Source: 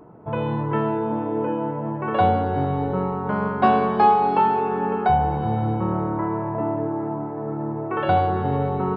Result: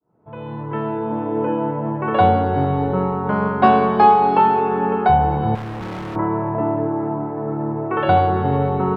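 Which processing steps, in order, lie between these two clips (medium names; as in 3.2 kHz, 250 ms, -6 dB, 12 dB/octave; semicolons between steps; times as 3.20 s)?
fade-in on the opening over 1.55 s; 5.55–6.16 s: overload inside the chain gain 31.5 dB; trim +4 dB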